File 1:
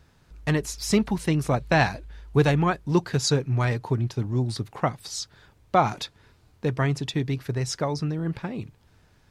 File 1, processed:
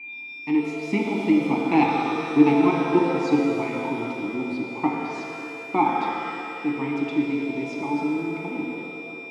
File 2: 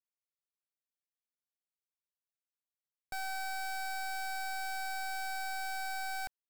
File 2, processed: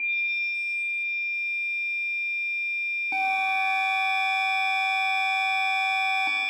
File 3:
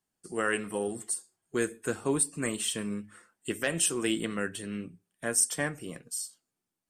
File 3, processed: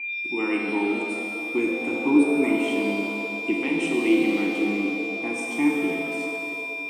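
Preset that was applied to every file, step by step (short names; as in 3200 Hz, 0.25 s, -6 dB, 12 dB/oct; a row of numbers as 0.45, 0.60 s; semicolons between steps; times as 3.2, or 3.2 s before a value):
HPF 170 Hz 12 dB/oct; in parallel at +1.5 dB: level quantiser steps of 22 dB; on the sum: whine 2400 Hz -34 dBFS; vowel filter u; shimmer reverb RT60 2.5 s, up +7 st, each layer -8 dB, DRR -0.5 dB; match loudness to -24 LUFS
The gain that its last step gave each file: +7.5, +18.5, +14.5 dB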